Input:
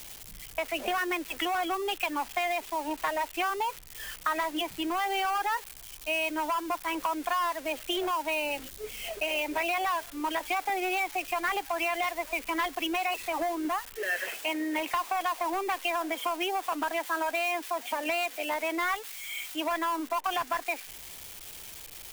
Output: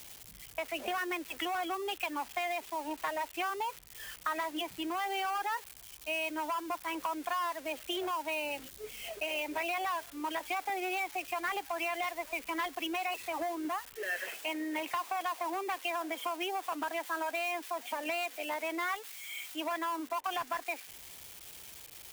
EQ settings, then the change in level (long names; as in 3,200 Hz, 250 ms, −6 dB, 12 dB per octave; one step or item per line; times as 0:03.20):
high-pass filter 49 Hz
−5.0 dB